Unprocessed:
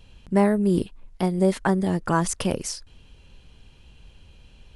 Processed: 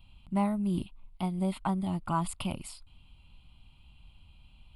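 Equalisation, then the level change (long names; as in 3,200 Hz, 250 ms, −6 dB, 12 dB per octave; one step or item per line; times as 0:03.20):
phaser with its sweep stopped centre 1,700 Hz, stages 6
−5.5 dB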